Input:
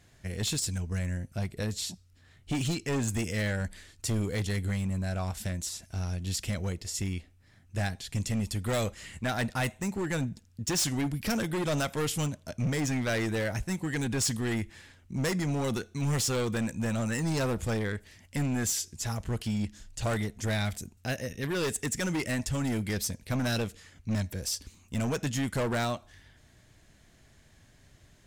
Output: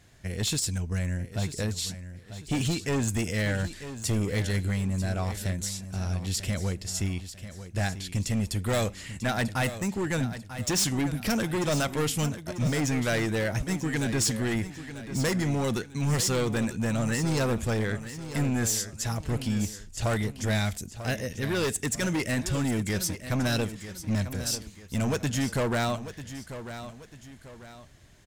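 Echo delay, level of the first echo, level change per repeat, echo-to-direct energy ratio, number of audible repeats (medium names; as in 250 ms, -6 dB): 943 ms, -12.0 dB, -8.0 dB, -11.5 dB, 2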